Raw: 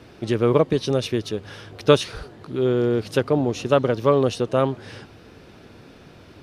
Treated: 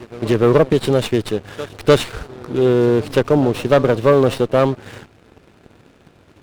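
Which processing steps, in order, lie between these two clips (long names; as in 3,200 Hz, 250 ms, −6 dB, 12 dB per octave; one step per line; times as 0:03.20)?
echo ahead of the sound 299 ms −20 dB
leveller curve on the samples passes 2
windowed peak hold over 5 samples
level −1 dB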